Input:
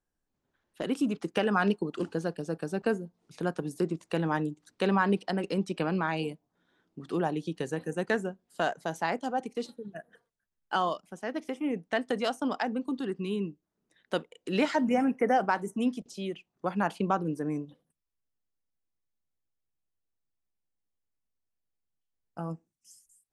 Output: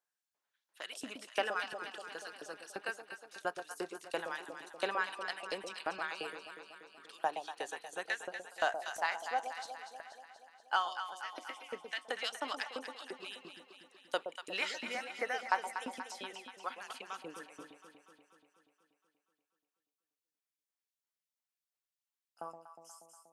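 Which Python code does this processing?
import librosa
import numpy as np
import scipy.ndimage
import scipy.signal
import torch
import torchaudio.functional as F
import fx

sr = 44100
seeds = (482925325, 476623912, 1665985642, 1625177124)

y = fx.filter_lfo_highpass(x, sr, shape='saw_up', hz=2.9, low_hz=600.0, high_hz=5300.0, q=0.96)
y = fx.echo_alternate(y, sr, ms=120, hz=820.0, feedback_pct=78, wet_db=-6.5)
y = F.gain(torch.from_numpy(y), -1.5).numpy()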